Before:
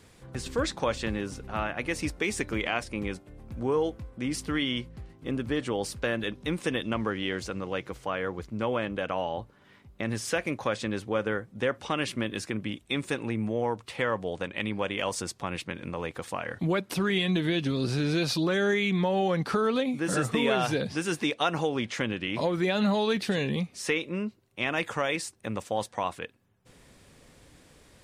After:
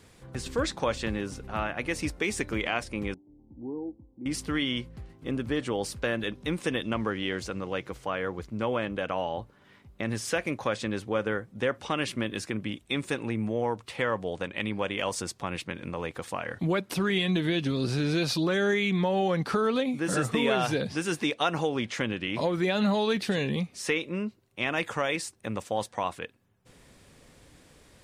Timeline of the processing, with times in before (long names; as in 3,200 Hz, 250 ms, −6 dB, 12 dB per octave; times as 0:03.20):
0:03.14–0:04.26: formant resonators in series u